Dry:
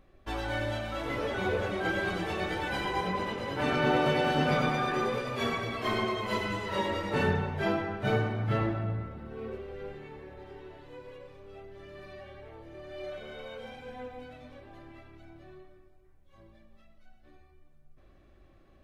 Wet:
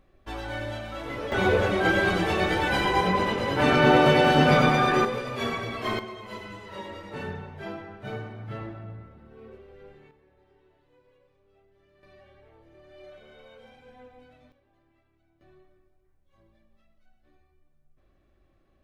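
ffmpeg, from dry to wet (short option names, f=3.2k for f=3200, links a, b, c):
-af "asetnsamples=n=441:p=0,asendcmd='1.32 volume volume 8dB;5.05 volume volume 1.5dB;5.99 volume volume -8dB;10.11 volume volume -16dB;12.03 volume volume -8dB;14.52 volume volume -18dB;15.41 volume volume -6.5dB',volume=-1dB"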